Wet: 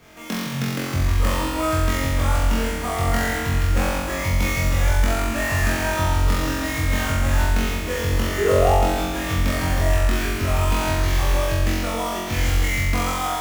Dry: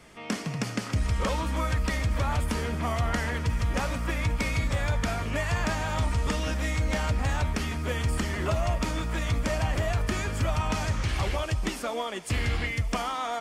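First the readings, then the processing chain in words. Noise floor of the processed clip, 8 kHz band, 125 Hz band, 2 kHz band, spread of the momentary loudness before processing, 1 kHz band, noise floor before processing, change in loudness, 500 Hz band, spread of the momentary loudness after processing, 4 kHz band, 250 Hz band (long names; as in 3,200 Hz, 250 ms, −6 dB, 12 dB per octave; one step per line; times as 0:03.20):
−27 dBFS, +8.5 dB, +5.5 dB, +7.0 dB, 3 LU, +7.0 dB, −37 dBFS, +7.0 dB, +8.5 dB, 4 LU, +6.5 dB, +6.5 dB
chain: sample-rate reduction 9,000 Hz, jitter 20%
sound drawn into the spectrogram rise, 0:08.38–0:08.74, 380–900 Hz −25 dBFS
flutter between parallel walls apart 3.8 metres, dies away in 1.4 s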